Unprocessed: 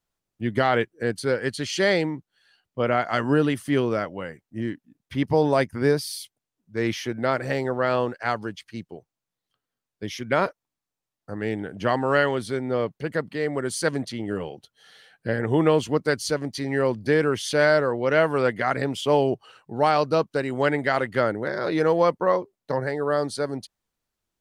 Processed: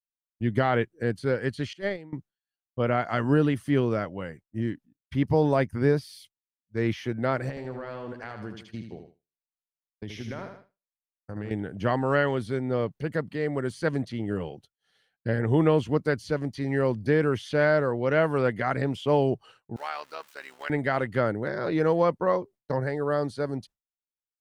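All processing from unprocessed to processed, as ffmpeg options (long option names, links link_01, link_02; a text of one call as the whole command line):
ffmpeg -i in.wav -filter_complex "[0:a]asettb=1/sr,asplit=3[link_01][link_02][link_03];[link_01]atrim=end=1.734[link_04];[link_02]atrim=start=1.73:end=2.13,asetpts=PTS-STARTPTS,afade=type=in:duration=0.004:curve=qsin,afade=type=out:start_time=0.396:duration=0.004:curve=qsin,agate=range=-25dB:threshold=-18dB:ratio=16:release=100:detection=peak,equalizer=frequency=5700:width=1:gain=-6,acontrast=71[link_05];[link_03]atrim=start=2.126[link_06];[link_04][link_05]acrossfade=duration=0.004:curve1=hsin:curve2=qsin[link_07];[link_07][link_06]acrossfade=duration=0.004:curve1=qsin:curve2=hsin,asettb=1/sr,asplit=3[link_08][link_09][link_10];[link_08]atrim=end=7.494[link_11];[link_09]atrim=start=7.49:end=11.51,asetpts=PTS-STARTPTS,afade=type=in:duration=0.004:curve=qsin,afade=type=out:start_time=4.016:duration=0.004:curve=qsin,highshelf=frequency=9700:gain=-8.5,acompressor=threshold=-30dB:ratio=10:attack=3.2:release=140:knee=1:detection=peak,aecho=1:1:77|154|231|308|385:0.447|0.205|0.0945|0.0435|0.02,atrim=end_sample=177282[link_12];[link_10]atrim=start=11.506[link_13];[link_11][link_12]acrossfade=duration=0.004:curve1=hsin:curve2=qsin[link_14];[link_14][link_13]acrossfade=duration=0.004:curve1=qsin:curve2=hsin,asettb=1/sr,asplit=3[link_15][link_16][link_17];[link_15]atrim=end=19.764[link_18];[link_16]atrim=start=19.76:end=20.7,asetpts=PTS-STARTPTS,afade=type=in:duration=0.004:curve=qsin,afade=type=out:start_time=0.936:duration=0.004:curve=qsin,aeval=exprs='val(0)+0.5*0.015*sgn(val(0))':channel_layout=same,highpass=1300,tremolo=f=72:d=0.75[link_19];[link_17]atrim=start=20.696[link_20];[link_18][link_19]acrossfade=duration=0.004:curve1=hsin:curve2=qsin[link_21];[link_21][link_20]acrossfade=duration=0.004:curve1=qsin:curve2=hsin,acrossover=split=3300[link_22][link_23];[link_23]acompressor=threshold=-45dB:ratio=4:attack=1:release=60[link_24];[link_22][link_24]amix=inputs=2:normalize=0,agate=range=-33dB:threshold=-42dB:ratio=3:detection=peak,lowshelf=frequency=180:gain=9.5,volume=-4dB" out.wav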